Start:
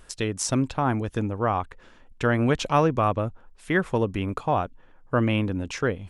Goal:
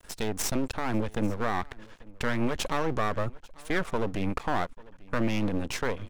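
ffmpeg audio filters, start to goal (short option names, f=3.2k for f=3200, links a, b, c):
-filter_complex "[0:a]alimiter=limit=-19dB:level=0:latency=1:release=15,aeval=exprs='max(val(0),0)':c=same,asplit=2[a][b];[b]aecho=0:1:843:0.0668[c];[a][c]amix=inputs=2:normalize=0,volume=4.5dB"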